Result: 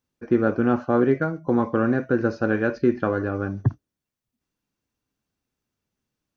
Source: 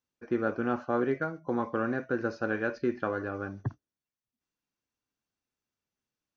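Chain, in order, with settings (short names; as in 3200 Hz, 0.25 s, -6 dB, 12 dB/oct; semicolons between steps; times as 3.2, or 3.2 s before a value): low shelf 400 Hz +8.5 dB; gain +4.5 dB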